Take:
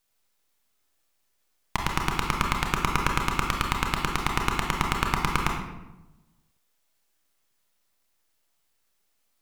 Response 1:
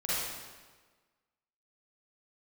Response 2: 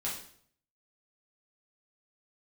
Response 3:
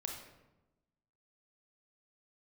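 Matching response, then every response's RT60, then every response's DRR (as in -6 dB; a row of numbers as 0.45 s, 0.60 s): 3; 1.4 s, 0.60 s, 1.0 s; -10.5 dB, -6.5 dB, 1.0 dB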